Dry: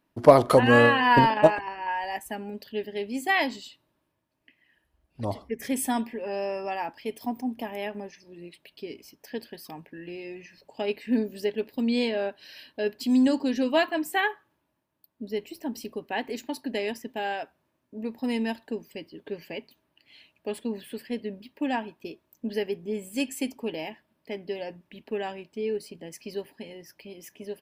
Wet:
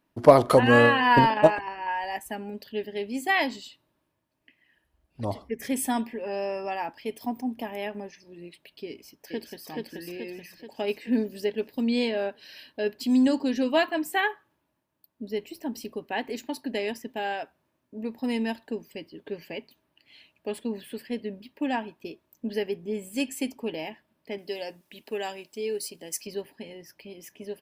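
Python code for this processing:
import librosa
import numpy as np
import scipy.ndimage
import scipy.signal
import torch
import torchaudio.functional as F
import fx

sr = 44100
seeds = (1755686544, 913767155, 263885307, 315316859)

y = fx.echo_throw(x, sr, start_s=8.87, length_s=0.81, ms=430, feedback_pct=55, wet_db=-1.0)
y = fx.bass_treble(y, sr, bass_db=-8, treble_db=14, at=(24.38, 26.27))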